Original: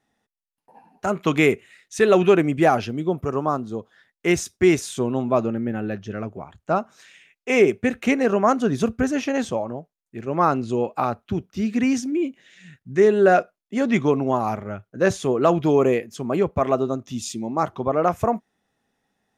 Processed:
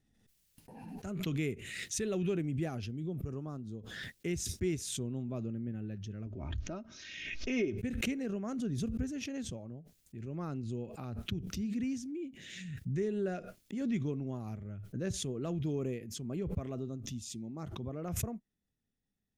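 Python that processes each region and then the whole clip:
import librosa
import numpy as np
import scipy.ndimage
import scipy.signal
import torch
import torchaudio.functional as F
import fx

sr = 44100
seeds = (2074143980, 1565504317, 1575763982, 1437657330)

y = fx.chain(x, sr, fx.steep_lowpass(hz=6300.0, slope=72),
    fx.comb(ms=3.2, depth=0.57),
    fx.pre_swell(db_per_s=110.0), at=(6.26, 7.78))
y = fx.tone_stack(y, sr, knobs='10-0-1')
y = fx.pre_swell(y, sr, db_per_s=35.0)
y = y * librosa.db_to_amplitude(3.5)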